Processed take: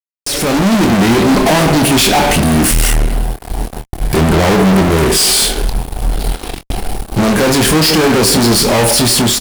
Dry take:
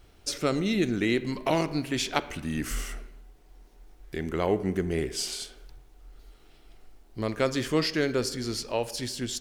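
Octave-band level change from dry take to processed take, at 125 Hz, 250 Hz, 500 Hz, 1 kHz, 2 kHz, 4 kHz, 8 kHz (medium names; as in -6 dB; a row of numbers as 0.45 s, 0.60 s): +20.0 dB, +18.0 dB, +15.5 dB, +20.0 dB, +18.0 dB, +20.0 dB, +23.0 dB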